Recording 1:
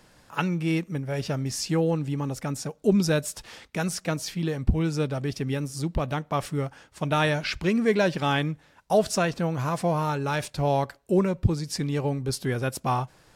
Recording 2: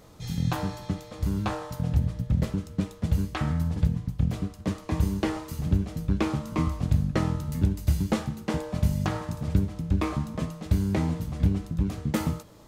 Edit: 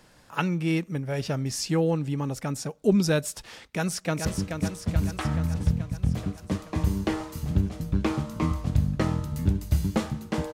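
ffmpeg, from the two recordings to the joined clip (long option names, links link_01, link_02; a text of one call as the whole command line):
ffmpeg -i cue0.wav -i cue1.wav -filter_complex "[0:a]apad=whole_dur=10.53,atrim=end=10.53,atrim=end=4.252[link_01];[1:a]atrim=start=2.408:end=8.69[link_02];[link_01][link_02]acrossfade=duration=0.004:curve1=hsin:curve2=hsin,asplit=2[link_03][link_04];[link_04]afade=type=in:start_time=3.74:duration=0.01,afade=type=out:start_time=4.25:duration=0.01,aecho=0:1:430|860|1290|1720|2150|2580|3010|3440|3870|4300:0.501187|0.325772|0.211752|0.137639|0.0894651|0.0581523|0.037799|0.0245693|0.0159701|0.0103805[link_05];[link_03][link_05]amix=inputs=2:normalize=0" out.wav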